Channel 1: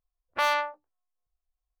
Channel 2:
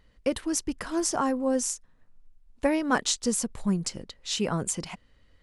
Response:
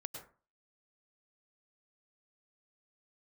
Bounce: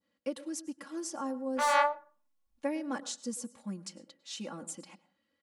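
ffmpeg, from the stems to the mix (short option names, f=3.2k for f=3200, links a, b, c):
-filter_complex "[0:a]flanger=delay=18:depth=6.1:speed=2.2,adelay=1200,volume=1.5dB,asplit=2[a][b];[b]volume=-17.5dB[c];[1:a]highpass=f=140:w=0.5412,highpass=f=140:w=1.3066,adynamicequalizer=threshold=0.00631:dfrequency=2300:dqfactor=0.71:tfrequency=2300:tqfactor=0.71:attack=5:release=100:ratio=0.375:range=3:mode=cutabove:tftype=bell,volume=-16dB,asplit=3[d][e][f];[e]volume=-8dB[g];[f]apad=whole_len=132324[h];[a][h]sidechaincompress=threshold=-51dB:ratio=8:attack=16:release=113[i];[2:a]atrim=start_sample=2205[j];[c][g]amix=inputs=2:normalize=0[k];[k][j]afir=irnorm=-1:irlink=0[l];[i][d][l]amix=inputs=3:normalize=0,aecho=1:1:3.6:0.94"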